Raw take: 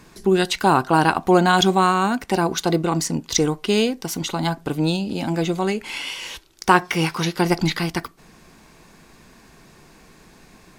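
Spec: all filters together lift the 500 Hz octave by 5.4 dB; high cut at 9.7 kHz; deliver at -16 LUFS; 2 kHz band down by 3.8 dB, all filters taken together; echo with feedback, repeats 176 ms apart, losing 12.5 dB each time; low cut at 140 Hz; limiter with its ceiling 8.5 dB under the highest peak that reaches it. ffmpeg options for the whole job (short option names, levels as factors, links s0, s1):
-af "highpass=140,lowpass=9700,equalizer=f=500:t=o:g=8,equalizer=f=2000:t=o:g=-6.5,alimiter=limit=0.447:level=0:latency=1,aecho=1:1:176|352|528:0.237|0.0569|0.0137,volume=1.58"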